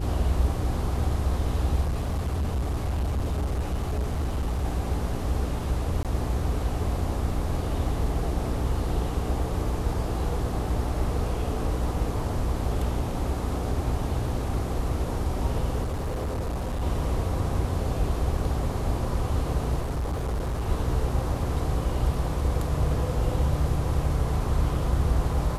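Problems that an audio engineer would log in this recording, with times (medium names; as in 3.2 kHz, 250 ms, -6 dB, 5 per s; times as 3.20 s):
hum 60 Hz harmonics 7 -31 dBFS
1.81–4.65 s: clipped -23 dBFS
6.03–6.05 s: dropout 17 ms
15.83–16.83 s: clipped -25.5 dBFS
19.80–20.68 s: clipped -24.5 dBFS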